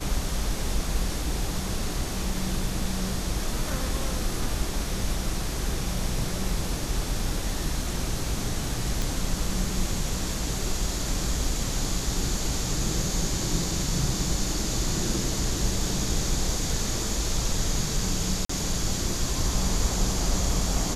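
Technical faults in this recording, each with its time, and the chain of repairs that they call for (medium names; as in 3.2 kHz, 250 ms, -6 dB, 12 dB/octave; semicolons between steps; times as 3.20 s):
9.02 s: pop
18.45–18.49 s: dropout 44 ms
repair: de-click; interpolate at 18.45 s, 44 ms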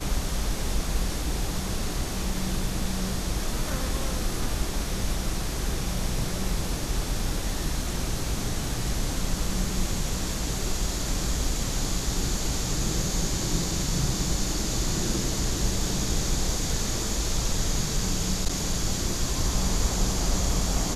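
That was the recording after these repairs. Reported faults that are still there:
nothing left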